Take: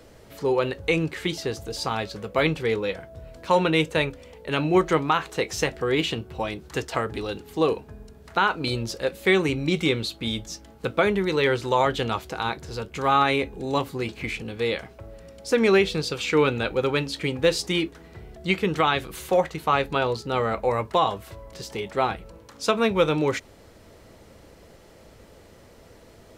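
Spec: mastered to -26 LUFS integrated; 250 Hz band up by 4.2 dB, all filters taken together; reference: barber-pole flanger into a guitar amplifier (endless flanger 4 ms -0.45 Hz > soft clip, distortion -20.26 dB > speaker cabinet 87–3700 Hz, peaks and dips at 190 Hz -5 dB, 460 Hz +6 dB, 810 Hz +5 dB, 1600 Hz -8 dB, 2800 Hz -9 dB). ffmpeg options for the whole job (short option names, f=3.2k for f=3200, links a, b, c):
-filter_complex "[0:a]equalizer=f=250:t=o:g=6.5,asplit=2[a][b];[b]adelay=4,afreqshift=-0.45[c];[a][c]amix=inputs=2:normalize=1,asoftclip=threshold=-12.5dB,highpass=87,equalizer=f=190:t=q:w=4:g=-5,equalizer=f=460:t=q:w=4:g=6,equalizer=f=810:t=q:w=4:g=5,equalizer=f=1.6k:t=q:w=4:g=-8,equalizer=f=2.8k:t=q:w=4:g=-9,lowpass=f=3.7k:w=0.5412,lowpass=f=3.7k:w=1.3066,volume=-0.5dB"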